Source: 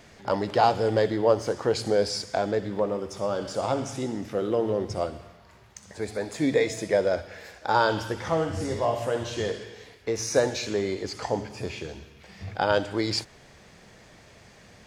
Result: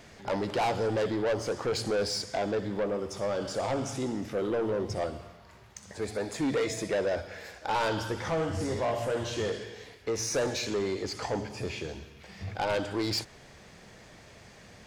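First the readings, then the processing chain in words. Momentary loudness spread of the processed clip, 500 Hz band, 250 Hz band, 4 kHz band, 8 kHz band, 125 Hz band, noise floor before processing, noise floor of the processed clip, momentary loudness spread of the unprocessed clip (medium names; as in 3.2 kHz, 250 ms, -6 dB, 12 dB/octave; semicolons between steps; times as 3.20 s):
11 LU, -4.5 dB, -3.0 dB, -2.0 dB, -1.0 dB, -3.0 dB, -53 dBFS, -53 dBFS, 13 LU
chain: saturation -24 dBFS, distortion -8 dB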